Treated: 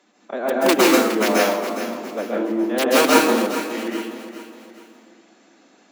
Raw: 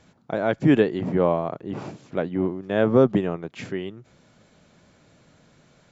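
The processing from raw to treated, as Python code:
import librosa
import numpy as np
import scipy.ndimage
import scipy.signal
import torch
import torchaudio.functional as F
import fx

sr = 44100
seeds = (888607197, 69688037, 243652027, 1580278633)

p1 = (np.mod(10.0 ** (8.5 / 20.0) * x + 1.0, 2.0) - 1.0) / 10.0 ** (8.5 / 20.0)
p2 = fx.pitch_keep_formants(p1, sr, semitones=3.0)
p3 = scipy.signal.sosfilt(scipy.signal.butter(6, 240.0, 'highpass', fs=sr, output='sos'), p2)
p4 = p3 + fx.echo_feedback(p3, sr, ms=413, feedback_pct=41, wet_db=-11.5, dry=0)
p5 = fx.rev_plate(p4, sr, seeds[0], rt60_s=0.73, hf_ratio=0.85, predelay_ms=120, drr_db=-4.0)
y = p5 * librosa.db_to_amplitude(-1.0)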